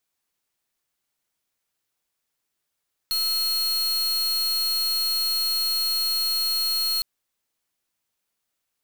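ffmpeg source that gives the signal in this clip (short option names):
-f lavfi -i "aevalsrc='0.0631*(2*lt(mod(4280*t,1),0.43)-1)':d=3.91:s=44100"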